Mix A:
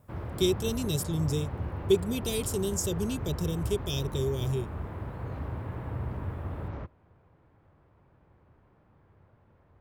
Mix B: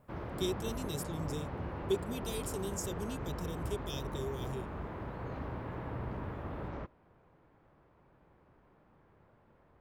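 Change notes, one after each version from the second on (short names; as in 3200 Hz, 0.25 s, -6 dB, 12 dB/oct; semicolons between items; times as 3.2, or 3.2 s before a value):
speech -8.5 dB; master: add bell 89 Hz -10 dB 1.1 oct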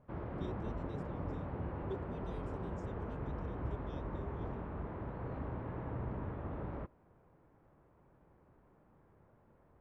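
speech -10.0 dB; master: add tape spacing loss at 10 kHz 30 dB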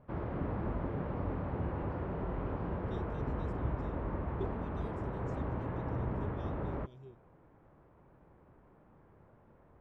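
speech: entry +2.50 s; background +4.5 dB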